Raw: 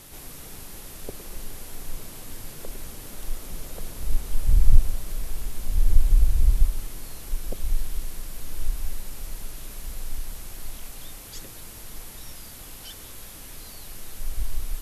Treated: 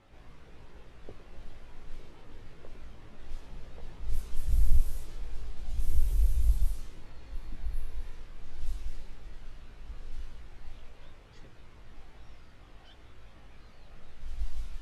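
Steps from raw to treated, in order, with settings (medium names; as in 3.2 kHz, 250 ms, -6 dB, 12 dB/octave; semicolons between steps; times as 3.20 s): level-controlled noise filter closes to 2.2 kHz, open at -11 dBFS; spectral replace 7.13–8.12 s, 350–9500 Hz; chorus voices 4, 0.17 Hz, delay 18 ms, depth 1.5 ms; trim -6 dB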